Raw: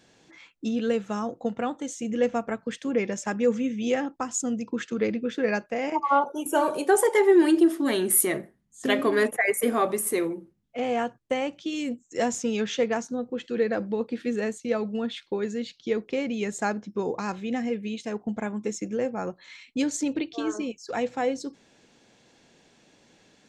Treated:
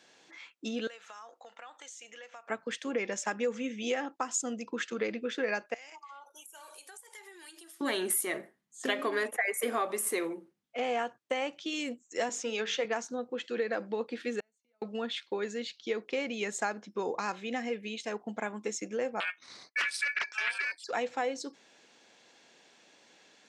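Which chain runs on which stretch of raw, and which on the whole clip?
0:00.87–0:02.50: high-pass filter 950 Hz + downward compressor, threshold −44 dBFS
0:05.74–0:07.81: first difference + downward compressor 12 to 1, threshold −45 dBFS
0:12.29–0:12.85: high-pass filter 250 Hz + high-shelf EQ 8,400 Hz −7 dB + mains-hum notches 50/100/150/200/250/300/350/400/450/500 Hz
0:14.40–0:14.82: comb filter 1.4 ms, depth 49% + downward compressor 16 to 1, threshold −32 dBFS + gate with flip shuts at −34 dBFS, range −36 dB
0:19.20–0:20.84: noise gate −55 dBFS, range −17 dB + ring modulation 2,000 Hz + highs frequency-modulated by the lows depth 0.46 ms
whole clip: meter weighting curve A; downward compressor, threshold −27 dBFS

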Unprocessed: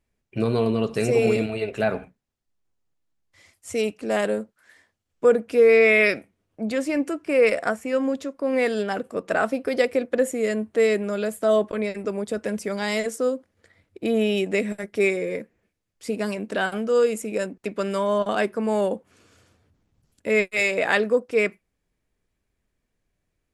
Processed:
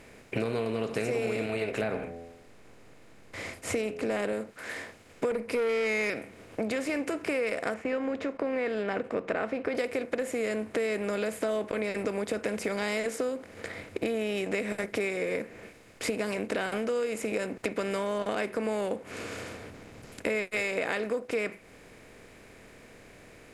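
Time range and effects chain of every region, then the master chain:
0:01.81–0:04.33: spectral tilt −1.5 dB per octave + hum removal 84.57 Hz, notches 9
0:05.31–0:06.10: EQ curve with evenly spaced ripples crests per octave 0.9, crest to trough 10 dB + tube saturation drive 11 dB, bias 0.2
0:07.74–0:09.75: low-pass filter 2,300 Hz + noise gate −51 dBFS, range −9 dB
whole clip: compressor on every frequency bin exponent 0.6; downward compressor 6 to 1, threshold −28 dBFS

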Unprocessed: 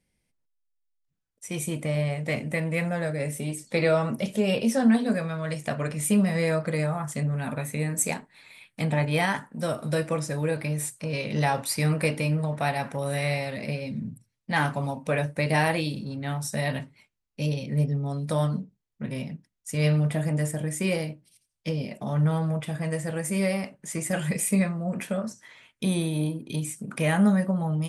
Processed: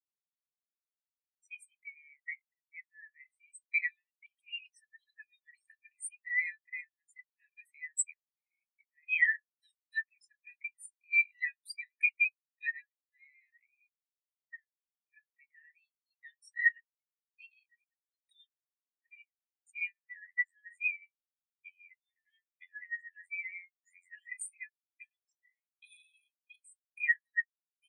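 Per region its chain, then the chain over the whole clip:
0:01.90–0:03.49: volume swells 654 ms + spectral tilt −3.5 dB per octave + one half of a high-frequency compander encoder only
0:04.19–0:05.85: bass and treble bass +10 dB, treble +4 dB + downward compressor 5 to 1, threshold −22 dBFS + all-pass dispersion highs, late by 58 ms, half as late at 2,700 Hz
0:08.13–0:09.03: lower of the sound and its delayed copy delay 0.51 ms + downward compressor 16 to 1, threshold −34 dBFS
0:12.97–0:16.05: low-shelf EQ 88 Hz +10 dB + downward compressor 8 to 1, threshold −34 dBFS + linearly interpolated sample-rate reduction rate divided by 2×
0:19.80–0:24.17: mid-hump overdrive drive 19 dB, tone 1,700 Hz, clips at −13.5 dBFS + phases set to zero 89.3 Hz + amplitude modulation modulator 280 Hz, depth 40%
whole clip: Chebyshev high-pass filter 1,700 Hz, order 10; downward compressor 2 to 1, threshold −41 dBFS; every bin expanded away from the loudest bin 4 to 1; level +5.5 dB

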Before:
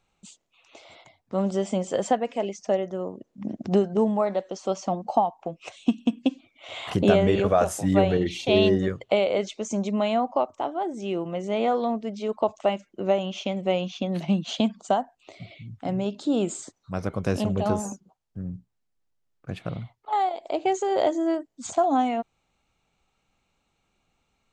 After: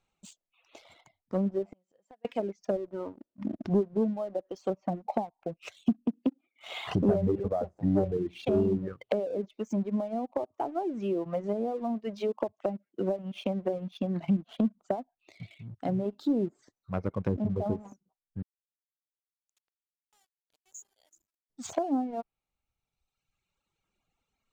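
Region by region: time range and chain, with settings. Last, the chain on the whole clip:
0:01.65–0:02.25: notch filter 3,400 Hz, Q 8.4 + gate with flip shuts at −23 dBFS, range −29 dB
0:02.76–0:03.70: comb filter 3.3 ms, depth 37% + windowed peak hold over 3 samples
0:06.05–0:06.85: Butterworth high-pass 160 Hz + comb filter 2.4 ms, depth 33%
0:10.43–0:13.95: high-pass filter 110 Hz + multiband upward and downward compressor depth 40%
0:18.42–0:21.50: resonant band-pass 7,000 Hz, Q 9.5 + centre clipping without the shift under −56.5 dBFS
whole clip: reverb reduction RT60 1.6 s; treble cut that deepens with the level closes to 420 Hz, closed at −22.5 dBFS; leveller curve on the samples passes 1; level −5 dB

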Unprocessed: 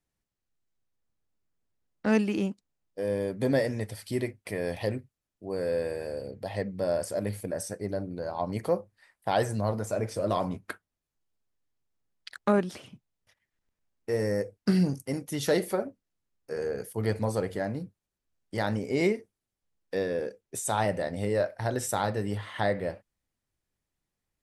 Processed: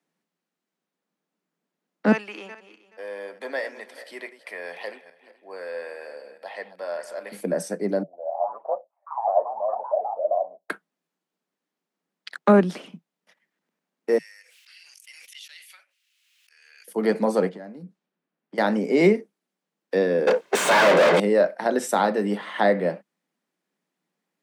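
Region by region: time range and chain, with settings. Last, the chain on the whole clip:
0:02.12–0:07.32: feedback delay that plays each chunk backwards 213 ms, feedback 40%, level −12.5 dB + high-pass filter 1,100 Hz + high-shelf EQ 3,600 Hz −10 dB
0:08.03–0:10.70: flat-topped band-pass 650 Hz, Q 4.2 + delay with pitch and tempo change per echo 99 ms, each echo +3 semitones, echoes 3, each echo −6 dB
0:14.18–0:16.88: volume swells 200 ms + four-pole ladder high-pass 2,300 Hz, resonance 50% + background raised ahead of every attack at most 25 dB per second
0:17.49–0:18.58: low-pass that shuts in the quiet parts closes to 2,400 Hz, open at −31.5 dBFS + bass and treble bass +3 dB, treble +2 dB + downward compressor 5 to 1, threshold −45 dBFS
0:20.27–0:21.20: lower of the sound and its delayed copy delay 1.9 ms + high-shelf EQ 8,200 Hz −7 dB + mid-hump overdrive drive 38 dB, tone 4,500 Hz, clips at −17.5 dBFS
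whole clip: Butterworth high-pass 160 Hz 96 dB per octave; high-shelf EQ 4,400 Hz −10 dB; level +8.5 dB

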